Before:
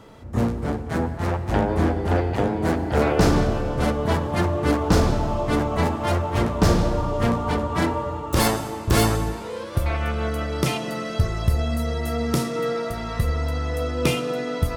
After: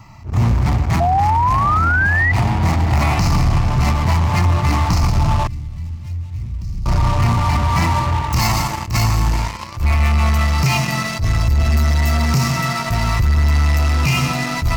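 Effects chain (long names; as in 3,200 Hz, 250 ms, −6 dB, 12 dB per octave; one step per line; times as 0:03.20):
phaser with its sweep stopped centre 2,300 Hz, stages 8
on a send at −13 dB: convolution reverb RT60 0.50 s, pre-delay 118 ms
on the sum: speech leveller within 3 dB 2 s
octave-band graphic EQ 125/250/500 Hz +5/−7/−9 dB
in parallel at −11.5 dB: fuzz pedal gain 36 dB, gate −35 dBFS
0:01.00–0:02.32: on the sum: sound drawn into the spectrogram rise 680–2,000 Hz −17 dBFS
brickwall limiter −15 dBFS, peak gain reduction 10 dB
0:05.47–0:06.86: guitar amp tone stack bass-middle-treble 10-0-1
level that may rise only so fast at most 170 dB per second
level +6.5 dB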